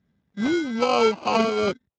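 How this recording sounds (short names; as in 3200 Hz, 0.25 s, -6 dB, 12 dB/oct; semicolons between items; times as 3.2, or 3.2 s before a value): aliases and images of a low sample rate 1800 Hz, jitter 0%; tremolo triangle 3.1 Hz, depth 40%; Speex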